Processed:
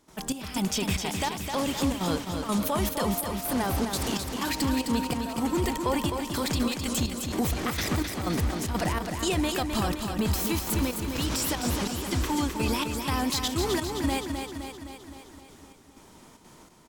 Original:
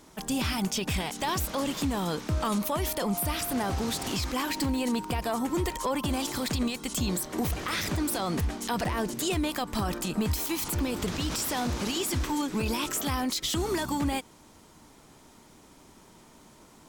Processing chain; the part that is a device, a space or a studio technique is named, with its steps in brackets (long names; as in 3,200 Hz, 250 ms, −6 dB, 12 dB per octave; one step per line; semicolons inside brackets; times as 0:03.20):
trance gate with a delay (gate pattern ".xxx...xxxxx" 187 BPM −12 dB; repeating echo 259 ms, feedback 60%, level −6 dB)
level +1.5 dB